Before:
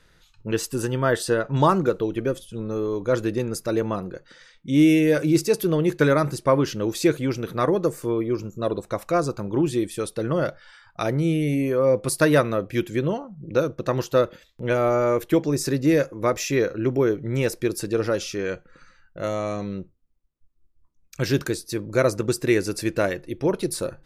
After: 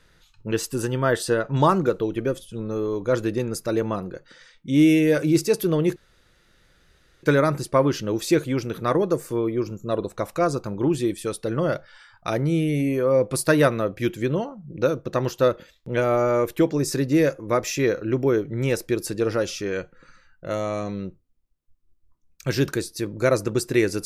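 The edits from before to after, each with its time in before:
0:05.96: splice in room tone 1.27 s

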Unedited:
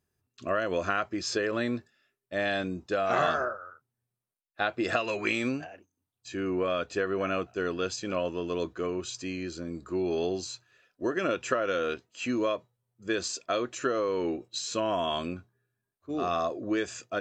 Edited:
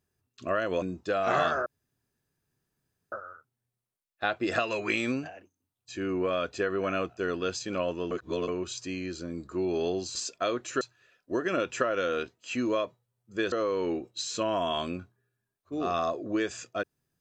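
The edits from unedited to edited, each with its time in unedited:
0:00.82–0:02.65: remove
0:03.49: splice in room tone 1.46 s
0:08.48–0:08.85: reverse
0:13.23–0:13.89: move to 0:10.52

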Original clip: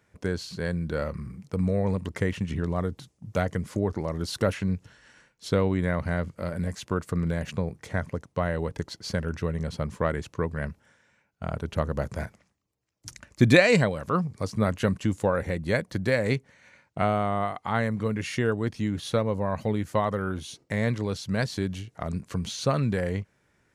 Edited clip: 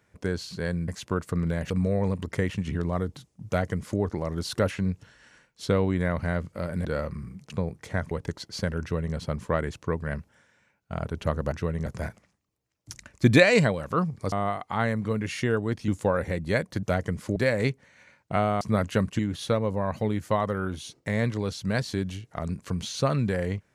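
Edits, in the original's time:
0:00.88–0:01.53: swap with 0:06.68–0:07.50
0:03.30–0:03.83: duplicate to 0:16.02
0:08.11–0:08.62: remove
0:09.32–0:09.66: duplicate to 0:12.03
0:14.49–0:15.07: swap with 0:17.27–0:18.83

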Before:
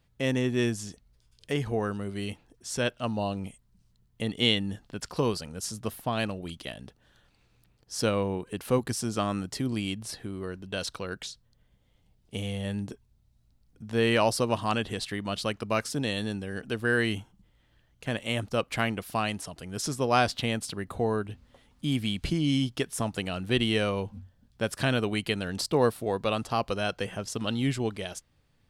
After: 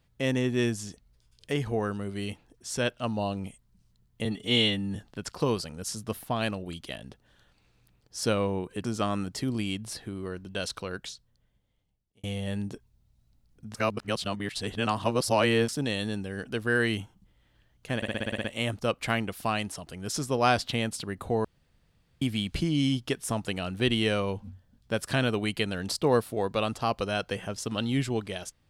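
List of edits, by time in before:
0:04.25–0:04.72: time-stretch 1.5×
0:08.61–0:09.02: remove
0:11.06–0:12.41: fade out
0:13.92–0:15.86: reverse
0:18.14: stutter 0.06 s, 9 plays
0:21.14–0:21.91: fill with room tone

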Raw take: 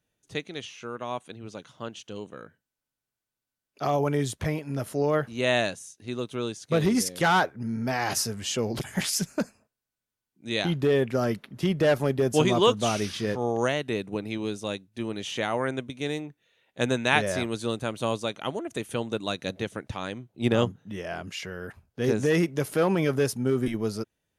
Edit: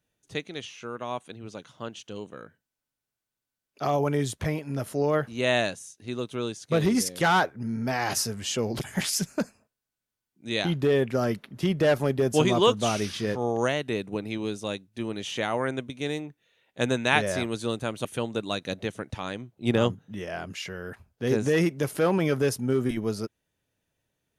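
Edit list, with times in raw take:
0:18.05–0:18.82: remove

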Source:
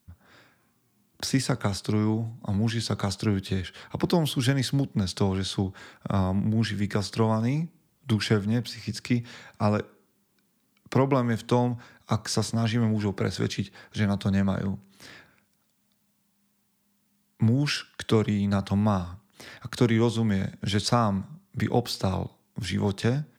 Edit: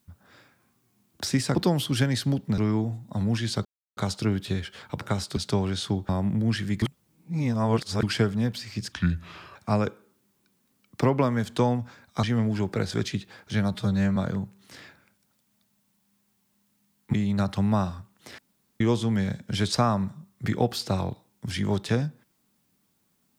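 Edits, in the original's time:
0:01.55–0:01.91: swap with 0:04.02–0:05.05
0:02.98: splice in silence 0.32 s
0:05.77–0:06.20: remove
0:06.93–0:08.14: reverse
0:09.03–0:09.48: play speed 71%
0:12.16–0:12.68: remove
0:14.19–0:14.47: time-stretch 1.5×
0:17.44–0:18.27: remove
0:19.52–0:19.94: fill with room tone

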